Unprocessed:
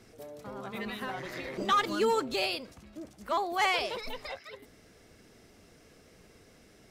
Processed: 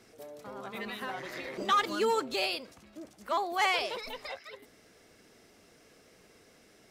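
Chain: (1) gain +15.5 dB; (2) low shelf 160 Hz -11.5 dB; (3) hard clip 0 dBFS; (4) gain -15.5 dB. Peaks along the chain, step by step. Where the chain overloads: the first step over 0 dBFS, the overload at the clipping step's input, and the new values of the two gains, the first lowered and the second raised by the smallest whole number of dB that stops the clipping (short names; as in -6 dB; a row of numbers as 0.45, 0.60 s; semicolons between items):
-2.5, -2.5, -2.5, -18.0 dBFS; no overload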